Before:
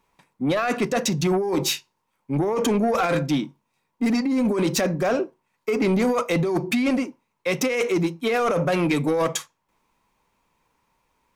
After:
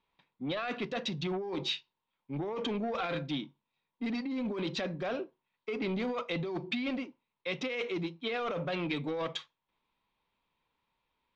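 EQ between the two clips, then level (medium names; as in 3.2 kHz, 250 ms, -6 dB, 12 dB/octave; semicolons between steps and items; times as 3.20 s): four-pole ladder low-pass 4.1 kHz, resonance 55%; -3.0 dB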